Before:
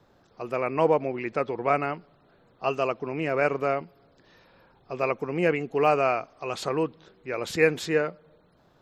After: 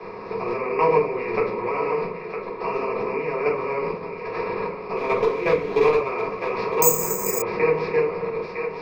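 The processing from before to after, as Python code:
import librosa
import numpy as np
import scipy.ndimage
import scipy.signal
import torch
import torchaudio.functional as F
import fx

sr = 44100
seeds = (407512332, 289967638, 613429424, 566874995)

p1 = fx.bin_compress(x, sr, power=0.4)
p2 = fx.ripple_eq(p1, sr, per_octave=0.86, db=14)
p3 = fx.quant_companded(p2, sr, bits=4, at=(4.96, 5.96), fade=0.02)
p4 = fx.level_steps(p3, sr, step_db=14)
p5 = fx.air_absorb(p4, sr, metres=250.0)
p6 = p5 + fx.echo_thinned(p5, sr, ms=958, feedback_pct=25, hz=420.0, wet_db=-10.5, dry=0)
p7 = fx.room_shoebox(p6, sr, seeds[0], volume_m3=180.0, walls='furnished', distance_m=3.8)
p8 = fx.resample_bad(p7, sr, factor=6, down='filtered', up='zero_stuff', at=(6.82, 7.42))
p9 = fx.band_squash(p8, sr, depth_pct=40)
y = p9 * librosa.db_to_amplitude(-7.5)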